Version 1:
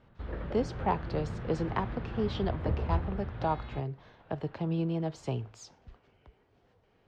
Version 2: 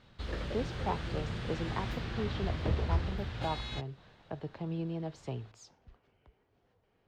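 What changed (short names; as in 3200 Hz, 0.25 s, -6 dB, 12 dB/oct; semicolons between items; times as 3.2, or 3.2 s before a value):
speech -5.5 dB; background: remove LPF 1500 Hz 12 dB/oct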